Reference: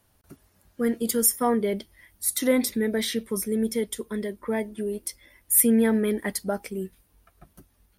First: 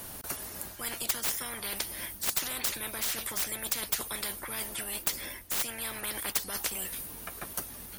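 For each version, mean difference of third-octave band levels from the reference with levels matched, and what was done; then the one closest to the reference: 17.5 dB: tracing distortion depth 0.032 ms; treble shelf 7.1 kHz +7.5 dB; reverse; compression 6:1, threshold -28 dBFS, peak gain reduction 17 dB; reverse; spectrum-flattening compressor 10:1; trim +7 dB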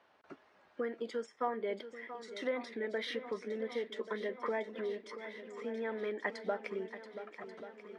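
11.5 dB: compression 6:1, threshold -34 dBFS, peak gain reduction 18.5 dB; on a send: shuffle delay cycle 1136 ms, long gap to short 1.5:1, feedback 56%, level -12 dB; on the sum: careless resampling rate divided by 3×, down filtered, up hold; band-pass 490–2500 Hz; trim +5.5 dB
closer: second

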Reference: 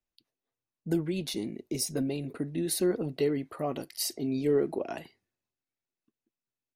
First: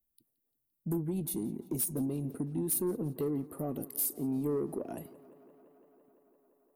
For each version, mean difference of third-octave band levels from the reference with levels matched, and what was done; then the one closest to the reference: 6.5 dB: FFT filter 240 Hz 0 dB, 2.1 kHz -18 dB, 5.5 kHz -17 dB, 8.5 kHz +2 dB, 14 kHz +13 dB; in parallel at +2 dB: compression, threshold -36 dBFS, peak gain reduction 13.5 dB; on the sum: saturation -21.5 dBFS, distortion -15 dB; tape echo 171 ms, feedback 87%, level -18.5 dB, low-pass 5.6 kHz; trim -3.5 dB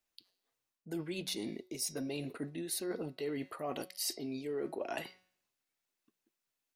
5.0 dB: bass shelf 470 Hz -7.5 dB; de-hum 184.4 Hz, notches 31; reverse; compression 6:1, threshold -42 dBFS, peak gain reduction 15 dB; reverse; bass shelf 200 Hz -4.5 dB; trim +7 dB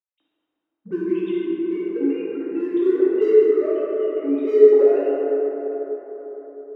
12.5 dB: formants replaced by sine waves; dynamic bell 560 Hz, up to +6 dB, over -37 dBFS, Q 0.71; in parallel at -11 dB: hard clipper -29.5 dBFS, distortion -2 dB; on the sum: plate-style reverb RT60 4.6 s, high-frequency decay 0.35×, DRR -8.5 dB; trim -3 dB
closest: second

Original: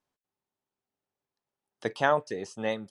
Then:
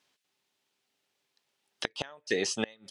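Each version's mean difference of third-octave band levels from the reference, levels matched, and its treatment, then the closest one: 10.5 dB: frequency weighting D; in parallel at +2 dB: compression 10:1, threshold -30 dBFS, peak gain reduction 14.5 dB; on the sum: inverted gate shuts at -14 dBFS, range -29 dB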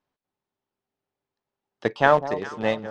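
5.0 dB: in parallel at -6 dB: small samples zeroed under -26.5 dBFS; on the sum: distance through air 130 m; echo whose repeats swap between lows and highs 202 ms, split 1 kHz, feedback 65%, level -12 dB; trim +4 dB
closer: second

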